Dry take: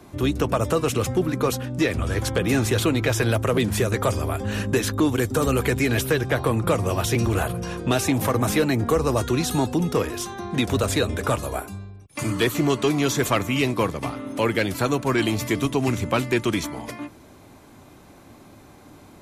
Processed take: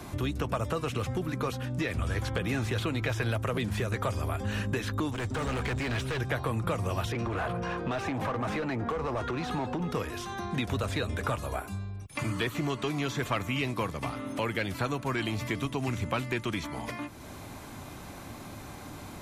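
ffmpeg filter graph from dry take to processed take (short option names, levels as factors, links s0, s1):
-filter_complex "[0:a]asettb=1/sr,asplit=3[s0][s1][s2];[s0]atrim=end=5.114[s3];[s1]atrim=start=5.11:end=6.2,asetpts=PTS-STARTPTS,afade=t=in:d=0.004:c=qsin,afade=t=out:st=1.086:d=0.004:c=qsin,lowpass=f=8900:w=0.5412,lowpass=f=8900:w=1.3066,asoftclip=type=hard:threshold=0.0631[s4];[s2]atrim=start=6.196[s5];[s3][s4]acrossfade=d=0.004:c1=hsin:c2=qsin[s6];[s6][s5]acrossfade=d=0.004:c1=qsin:c2=hsin,asettb=1/sr,asplit=3[s7][s8][s9];[s7]atrim=end=7.124[s10];[s8]atrim=start=7.12:end=9.91,asetpts=PTS-STARTPTS,afade=t=in:d=0.004:c=qsin,afade=t=out:st=2.786:d=0.004:c=qsin,aemphasis=mode=reproduction:type=50kf,acompressor=threshold=0.0794:ratio=2.5:attack=3.2:release=140:knee=1:detection=peak,asplit=2[s11][s12];[s12]highpass=f=720:p=1,volume=7.94,asoftclip=type=tanh:threshold=0.178[s13];[s11][s13]amix=inputs=2:normalize=0,lowpass=f=1100:p=1,volume=0.501[s14];[s9]atrim=start=9.906[s15];[s10][s14]acrossfade=d=0.004:c1=hsin:c2=qsin[s16];[s16][s15]acrossfade=d=0.004:c1=qsin:c2=hsin,acompressor=threshold=0.00631:ratio=2,equalizer=f=370:t=o:w=1.6:g=-5.5,acrossover=split=3900[s17][s18];[s18]acompressor=threshold=0.00178:ratio=4:attack=1:release=60[s19];[s17][s19]amix=inputs=2:normalize=0,volume=2.37"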